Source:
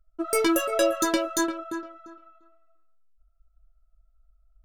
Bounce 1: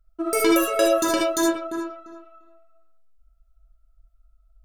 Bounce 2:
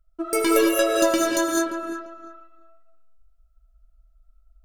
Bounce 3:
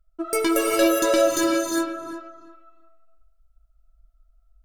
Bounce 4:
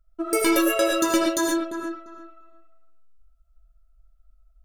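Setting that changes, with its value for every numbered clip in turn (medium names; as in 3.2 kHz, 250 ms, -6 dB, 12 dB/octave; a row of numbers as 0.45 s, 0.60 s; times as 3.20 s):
gated-style reverb, gate: 90 ms, 230 ms, 430 ms, 150 ms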